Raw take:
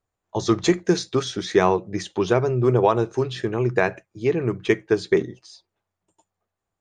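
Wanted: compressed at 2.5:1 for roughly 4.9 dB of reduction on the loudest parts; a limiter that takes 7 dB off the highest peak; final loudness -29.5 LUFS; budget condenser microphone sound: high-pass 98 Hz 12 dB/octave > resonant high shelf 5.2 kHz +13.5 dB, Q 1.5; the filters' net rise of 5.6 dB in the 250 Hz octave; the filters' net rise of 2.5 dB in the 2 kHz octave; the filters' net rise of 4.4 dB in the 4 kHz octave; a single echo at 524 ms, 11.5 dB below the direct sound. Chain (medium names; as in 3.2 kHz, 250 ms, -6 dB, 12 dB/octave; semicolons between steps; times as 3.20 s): peaking EQ 250 Hz +9 dB; peaking EQ 2 kHz +4 dB; peaking EQ 4 kHz +3 dB; compression 2.5:1, threshold -16 dBFS; peak limiter -10 dBFS; high-pass 98 Hz 12 dB/octave; resonant high shelf 5.2 kHz +13.5 dB, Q 1.5; delay 524 ms -11.5 dB; trim -6.5 dB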